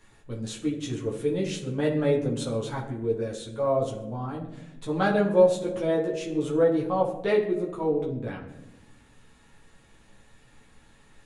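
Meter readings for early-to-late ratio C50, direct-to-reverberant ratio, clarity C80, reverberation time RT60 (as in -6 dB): 8.0 dB, -4.5 dB, 11.0 dB, 1.0 s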